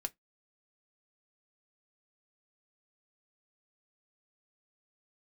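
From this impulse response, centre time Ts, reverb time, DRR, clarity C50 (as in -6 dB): 3 ms, 0.15 s, 6.0 dB, 30.0 dB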